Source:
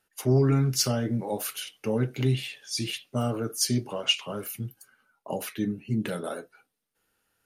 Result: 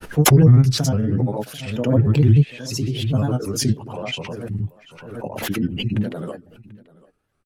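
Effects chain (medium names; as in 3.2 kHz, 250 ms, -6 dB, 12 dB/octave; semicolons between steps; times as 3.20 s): dynamic bell 140 Hz, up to +6 dB, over -38 dBFS, Q 3.2; granulator, pitch spread up and down by 3 st; tilt EQ -2.5 dB/octave; on a send: delay 738 ms -22 dB; on the sum: swell ahead of each attack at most 56 dB/s; trim +1 dB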